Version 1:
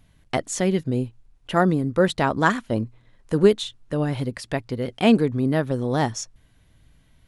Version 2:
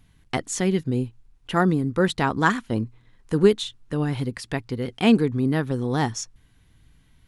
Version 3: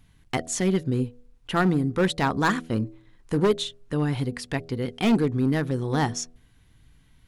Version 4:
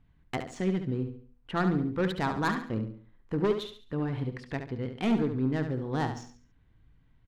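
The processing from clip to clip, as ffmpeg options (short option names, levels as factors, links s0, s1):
-af "equalizer=f=600:t=o:w=0.34:g=-10"
-af "volume=5.96,asoftclip=hard,volume=0.168,bandreject=f=81.32:t=h:w=4,bandreject=f=162.64:t=h:w=4,bandreject=f=243.96:t=h:w=4,bandreject=f=325.28:t=h:w=4,bandreject=f=406.6:t=h:w=4,bandreject=f=487.92:t=h:w=4,bandreject=f=569.24:t=h:w=4,bandreject=f=650.56:t=h:w=4,bandreject=f=731.88:t=h:w=4"
-filter_complex "[0:a]adynamicsmooth=sensitivity=1.5:basefreq=2300,asplit=2[s0][s1];[s1]aecho=0:1:70|140|210|280:0.376|0.139|0.0515|0.019[s2];[s0][s2]amix=inputs=2:normalize=0,volume=0.501"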